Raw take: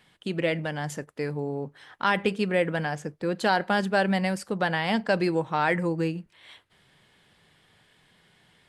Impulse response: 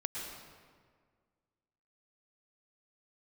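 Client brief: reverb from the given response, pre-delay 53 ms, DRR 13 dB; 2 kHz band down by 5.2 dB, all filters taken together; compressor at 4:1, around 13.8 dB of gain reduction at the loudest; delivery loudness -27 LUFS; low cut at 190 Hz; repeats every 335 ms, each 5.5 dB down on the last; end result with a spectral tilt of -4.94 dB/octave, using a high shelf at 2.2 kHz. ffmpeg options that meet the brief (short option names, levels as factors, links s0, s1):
-filter_complex "[0:a]highpass=190,equalizer=f=2000:t=o:g=-4,highshelf=f=2200:g=-5.5,acompressor=threshold=0.0141:ratio=4,aecho=1:1:335|670|1005|1340|1675|2010|2345:0.531|0.281|0.149|0.079|0.0419|0.0222|0.0118,asplit=2[s0][s1];[1:a]atrim=start_sample=2205,adelay=53[s2];[s1][s2]afir=irnorm=-1:irlink=0,volume=0.178[s3];[s0][s3]amix=inputs=2:normalize=0,volume=3.98"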